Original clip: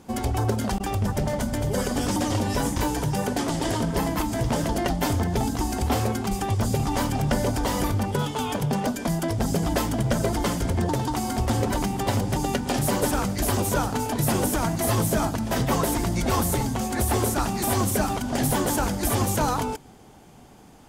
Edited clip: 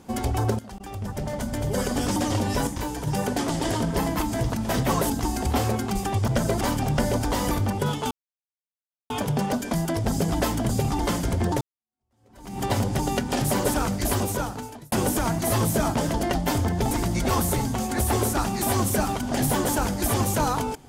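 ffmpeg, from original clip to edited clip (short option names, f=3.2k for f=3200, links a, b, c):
-filter_complex "[0:a]asplit=15[a][b][c][d][e][f][g][h][i][j][k][l][m][n][o];[a]atrim=end=0.59,asetpts=PTS-STARTPTS,afade=t=out:st=0.586:d=0.004:c=hsin:silence=0.11885[p];[b]atrim=start=0.59:end=2.672,asetpts=PTS-STARTPTS,afade=t=in:d=1.23:silence=0.11885[q];[c]atrim=start=2.668:end=3.072,asetpts=PTS-STARTPTS,volume=-5dB[r];[d]atrim=start=3.068:end=4.502[s];[e]atrim=start=15.318:end=15.922[t];[f]atrim=start=5.458:end=6.642[u];[g]atrim=start=10.028:end=10.362[v];[h]atrim=start=6.938:end=8.44,asetpts=PTS-STARTPTS,afade=t=out:st=1.498:d=0.004:c=hsin,apad=pad_dur=0.99[w];[i]atrim=start=8.44:end=10.032,asetpts=PTS-STARTPTS,afade=t=in:d=0.004:c=hsin[x];[j]atrim=start=6.638:end=6.942[y];[k]atrim=start=10.358:end=10.98,asetpts=PTS-STARTPTS,afade=t=out:st=0.618:d=0.004:c=hsin[z];[l]atrim=start=10.98:end=14.29,asetpts=PTS-STARTPTS,afade=t=in:d=1:c=exp,afade=t=out:st=2.5:d=0.81[aa];[m]atrim=start=14.29:end=15.322,asetpts=PTS-STARTPTS,afade=t=in:d=0.004:c=hsin[ab];[n]atrim=start=4.498:end=5.462[ac];[o]atrim=start=15.918[ad];[p][q]concat=n=2:v=0:a=1[ae];[ae][r]acrossfade=d=0.004:c1=hsin:c2=hsin[af];[af][s]acrossfade=d=0.004:c1=hsin:c2=hsin[ag];[ag][t]acrossfade=d=0.004:c1=hsin:c2=hsin[ah];[ah][u]acrossfade=d=0.004:c1=hsin:c2=hsin[ai];[ai][v]acrossfade=d=0.004:c1=hsin:c2=hsin[aj];[w][x]concat=n=2:v=0:a=1[ak];[aj][ak]acrossfade=d=0.004:c1=hsin:c2=hsin[al];[al][y]acrossfade=d=0.004:c1=hsin:c2=hsin[am];[z][aa][ab]concat=n=3:v=0:a=1[an];[am][an]acrossfade=d=0.004:c1=hsin:c2=hsin[ao];[ao][ac]acrossfade=d=0.004:c1=hsin:c2=hsin[ap];[ap][ad]acrossfade=d=0.004:c1=hsin:c2=hsin"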